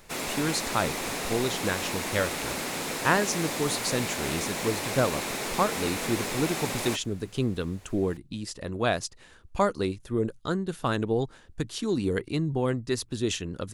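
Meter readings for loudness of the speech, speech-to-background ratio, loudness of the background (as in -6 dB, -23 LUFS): -30.0 LUFS, 1.0 dB, -31.0 LUFS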